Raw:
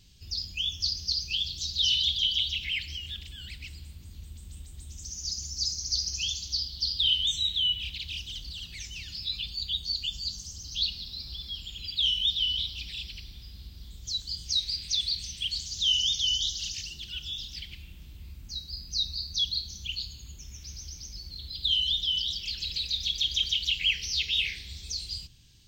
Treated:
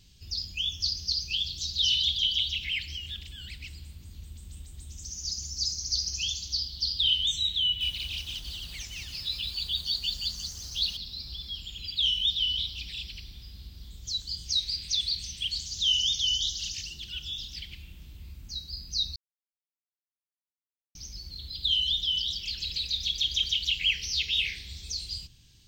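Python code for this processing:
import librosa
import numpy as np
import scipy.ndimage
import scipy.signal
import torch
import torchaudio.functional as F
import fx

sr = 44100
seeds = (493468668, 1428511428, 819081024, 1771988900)

y = fx.echo_crushed(x, sr, ms=177, feedback_pct=35, bits=8, wet_db=-4.0, at=(7.63, 10.97))
y = fx.edit(y, sr, fx.silence(start_s=19.16, length_s=1.79), tone=tone)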